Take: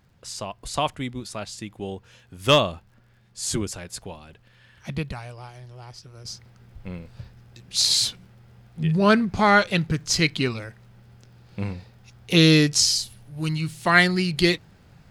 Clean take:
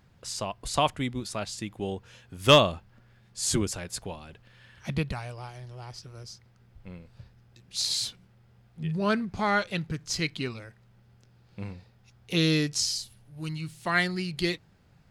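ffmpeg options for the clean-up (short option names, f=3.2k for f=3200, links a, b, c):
-af "adeclick=t=4,asetnsamples=n=441:p=0,asendcmd='6.25 volume volume -8.5dB',volume=0dB"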